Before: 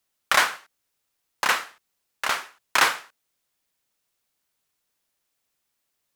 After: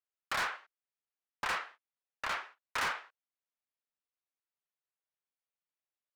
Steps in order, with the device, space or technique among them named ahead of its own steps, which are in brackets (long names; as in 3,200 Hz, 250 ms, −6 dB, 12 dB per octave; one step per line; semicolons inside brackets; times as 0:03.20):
walkie-talkie (band-pass filter 400–2,800 Hz; hard clipping −24.5 dBFS, distortion −4 dB; noise gate −47 dBFS, range −12 dB)
level −5.5 dB